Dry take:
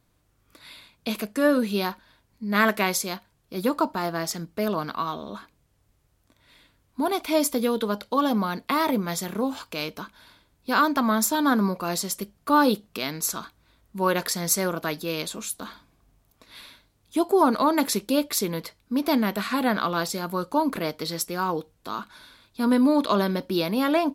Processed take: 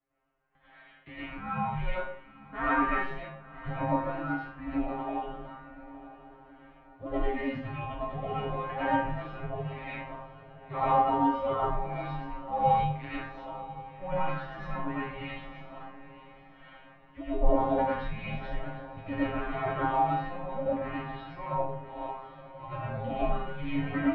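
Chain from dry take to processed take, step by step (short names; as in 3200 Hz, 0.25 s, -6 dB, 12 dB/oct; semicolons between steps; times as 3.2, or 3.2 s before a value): resonator 130 Hz, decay 0.37 s, harmonics all, mix 100%; mistuned SSB -370 Hz 430–2800 Hz; diffused feedback echo 1.002 s, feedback 42%, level -15.5 dB; digital reverb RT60 0.55 s, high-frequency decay 0.65×, pre-delay 60 ms, DRR -8.5 dB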